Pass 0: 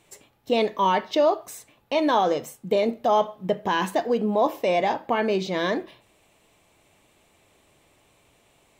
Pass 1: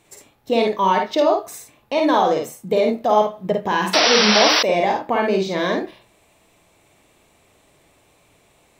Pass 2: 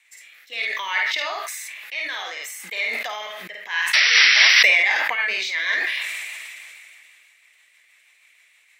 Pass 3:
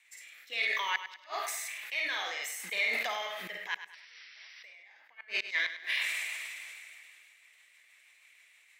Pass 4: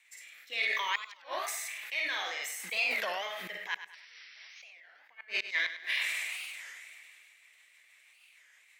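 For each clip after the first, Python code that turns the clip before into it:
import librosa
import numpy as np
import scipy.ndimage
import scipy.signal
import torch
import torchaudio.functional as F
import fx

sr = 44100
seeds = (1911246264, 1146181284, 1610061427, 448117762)

y1 = fx.peak_eq(x, sr, hz=3000.0, db=-3.5, octaves=0.26)
y1 = fx.room_early_taps(y1, sr, ms=(52, 75), db=(-3.5, -12.5))
y1 = fx.spec_paint(y1, sr, seeds[0], shape='noise', start_s=3.93, length_s=0.7, low_hz=420.0, high_hz=5900.0, level_db=-19.0)
y1 = F.gain(torch.from_numpy(y1), 2.5).numpy()
y2 = fx.highpass_res(y1, sr, hz=2000.0, q=4.4)
y2 = fx.rotary_switch(y2, sr, hz=0.65, then_hz=6.3, switch_at_s=3.6)
y2 = fx.sustainer(y2, sr, db_per_s=22.0)
y2 = F.gain(torch.from_numpy(y2), -1.0).numpy()
y3 = fx.gate_flip(y2, sr, shuts_db=-13.0, range_db=-34)
y3 = fx.echo_feedback(y3, sr, ms=101, feedback_pct=37, wet_db=-11.5)
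y3 = F.gain(torch.from_numpy(y3), -5.0).numpy()
y4 = fx.record_warp(y3, sr, rpm=33.33, depth_cents=250.0)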